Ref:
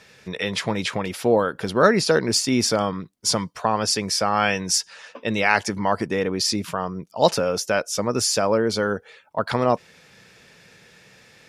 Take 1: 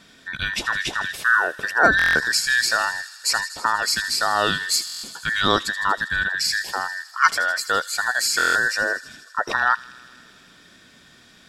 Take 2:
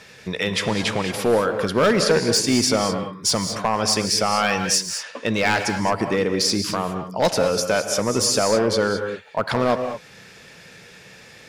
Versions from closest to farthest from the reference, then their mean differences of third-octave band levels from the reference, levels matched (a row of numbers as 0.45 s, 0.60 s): 2, 1; 7.0 dB, 10.5 dB